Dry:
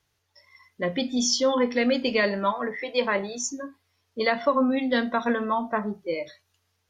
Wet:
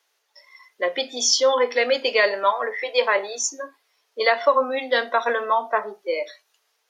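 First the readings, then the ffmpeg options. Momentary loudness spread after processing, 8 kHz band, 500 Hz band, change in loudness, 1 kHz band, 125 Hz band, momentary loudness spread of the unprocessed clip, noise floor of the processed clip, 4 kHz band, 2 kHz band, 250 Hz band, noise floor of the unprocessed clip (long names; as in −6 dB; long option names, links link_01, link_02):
10 LU, +5.5 dB, +4.5 dB, +4.0 dB, +5.5 dB, can't be measured, 9 LU, −71 dBFS, +5.5 dB, +5.5 dB, −12.5 dB, −74 dBFS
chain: -af "highpass=frequency=430:width=0.5412,highpass=frequency=430:width=1.3066,volume=5.5dB"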